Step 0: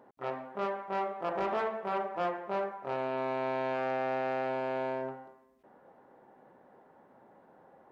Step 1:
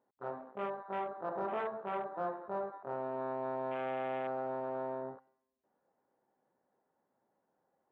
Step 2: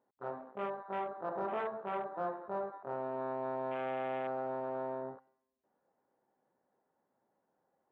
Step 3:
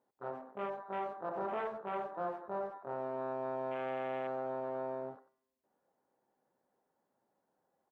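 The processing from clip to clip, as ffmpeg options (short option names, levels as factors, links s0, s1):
-af "afwtdn=0.0126,volume=0.596"
-af anull
-filter_complex "[0:a]asplit=2[s0][s1];[s1]adelay=90,highpass=300,lowpass=3400,asoftclip=type=hard:threshold=0.02,volume=0.178[s2];[s0][s2]amix=inputs=2:normalize=0,volume=0.891"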